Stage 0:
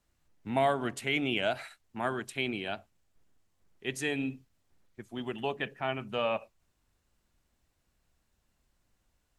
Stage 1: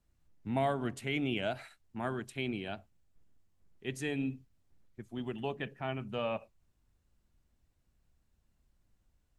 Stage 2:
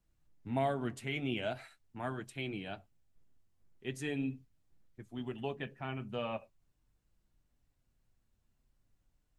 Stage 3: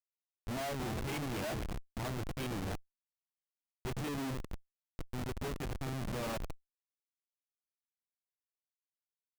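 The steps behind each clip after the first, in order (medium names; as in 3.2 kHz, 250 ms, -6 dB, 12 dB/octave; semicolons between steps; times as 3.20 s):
bass shelf 300 Hz +10 dB; trim -6.5 dB
flange 0.42 Hz, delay 6.1 ms, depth 2.4 ms, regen -47%; trim +1.5 dB
frequency-shifting echo 250 ms, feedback 53%, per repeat +81 Hz, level -12.5 dB; Schmitt trigger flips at -40.5 dBFS; power-law waveshaper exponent 0.7; trim +3 dB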